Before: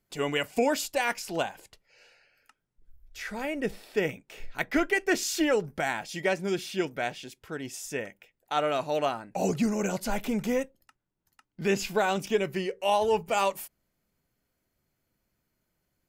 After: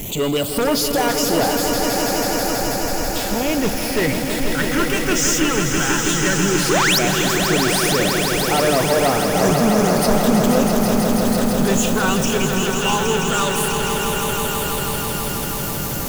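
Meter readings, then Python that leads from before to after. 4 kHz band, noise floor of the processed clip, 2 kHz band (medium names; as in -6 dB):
+16.5 dB, -24 dBFS, +11.0 dB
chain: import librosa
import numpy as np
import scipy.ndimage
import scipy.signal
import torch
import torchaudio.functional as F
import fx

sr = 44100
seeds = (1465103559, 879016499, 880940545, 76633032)

p1 = x + 0.5 * 10.0 ** (-34.0 / 20.0) * np.sign(x)
p2 = fx.high_shelf(p1, sr, hz=8400.0, db=6.0)
p3 = fx.phaser_stages(p2, sr, stages=8, low_hz=570.0, high_hz=3500.0, hz=0.14, feedback_pct=25)
p4 = fx.spec_paint(p3, sr, seeds[0], shape='rise', start_s=6.69, length_s=0.3, low_hz=310.0, high_hz=6000.0, level_db=-20.0)
p5 = fx.fold_sine(p4, sr, drive_db=13, ceiling_db=-11.0)
p6 = p4 + F.gain(torch.from_numpy(p5), -10.0).numpy()
p7 = fx.echo_swell(p6, sr, ms=163, loudest=5, wet_db=-7.5)
y = F.gain(torch.from_numpy(p7), 1.0).numpy()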